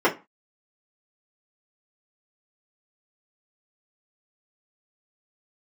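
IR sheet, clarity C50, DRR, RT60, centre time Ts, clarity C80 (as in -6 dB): 15.0 dB, -6.5 dB, 0.25 s, 15 ms, 23.0 dB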